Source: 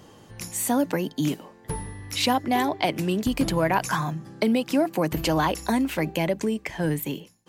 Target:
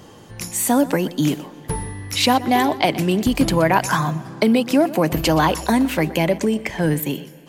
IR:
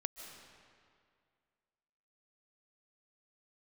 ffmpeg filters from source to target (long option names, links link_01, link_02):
-filter_complex "[0:a]asplit=2[link_01][link_02];[1:a]atrim=start_sample=2205,adelay=123[link_03];[link_02][link_03]afir=irnorm=-1:irlink=0,volume=-15dB[link_04];[link_01][link_04]amix=inputs=2:normalize=0,volume=6dB"